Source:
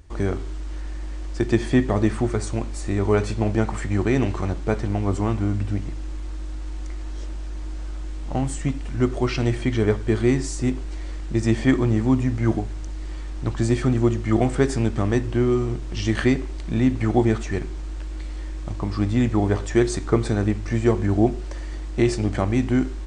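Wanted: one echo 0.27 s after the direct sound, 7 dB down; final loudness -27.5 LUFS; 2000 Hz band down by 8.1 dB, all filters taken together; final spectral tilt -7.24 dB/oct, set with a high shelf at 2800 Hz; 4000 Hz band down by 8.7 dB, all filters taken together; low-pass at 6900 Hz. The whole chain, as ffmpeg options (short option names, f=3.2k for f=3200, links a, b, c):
-af "lowpass=6.9k,equalizer=f=2k:t=o:g=-7.5,highshelf=f=2.8k:g=-3.5,equalizer=f=4k:t=o:g=-5.5,aecho=1:1:270:0.447,volume=-4.5dB"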